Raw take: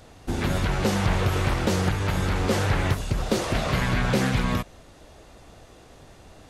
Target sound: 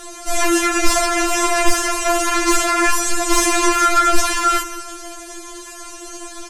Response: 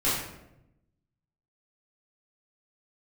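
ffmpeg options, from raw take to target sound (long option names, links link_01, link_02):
-filter_complex "[0:a]asoftclip=type=tanh:threshold=-23.5dB,asplit=2[link_01][link_02];[link_02]highpass=frequency=720:poles=1,volume=7dB,asoftclip=type=tanh:threshold=-23.5dB[link_03];[link_01][link_03]amix=inputs=2:normalize=0,lowpass=frequency=1200:poles=1,volume=-6dB,equalizer=frequency=125:width_type=o:width=1:gain=6,equalizer=frequency=250:width_type=o:width=1:gain=-10,equalizer=frequency=500:width_type=o:width=1:gain=-5,equalizer=frequency=1000:width_type=o:width=1:gain=-4,equalizer=frequency=2000:width_type=o:width=1:gain=-4,equalizer=frequency=4000:width_type=o:width=1:gain=-10,equalizer=frequency=8000:width_type=o:width=1:gain=7,aecho=1:1:157|314|471|628|785:0.141|0.0735|0.0382|0.0199|0.0103,afreqshift=-220,highshelf=frequency=2100:gain=11.5,asplit=2[link_04][link_05];[1:a]atrim=start_sample=2205[link_06];[link_05][link_06]afir=irnorm=-1:irlink=0,volume=-23dB[link_07];[link_04][link_07]amix=inputs=2:normalize=0,alimiter=level_in=23.5dB:limit=-1dB:release=50:level=0:latency=1,afftfilt=real='re*4*eq(mod(b,16),0)':imag='im*4*eq(mod(b,16),0)':win_size=2048:overlap=0.75,volume=1dB"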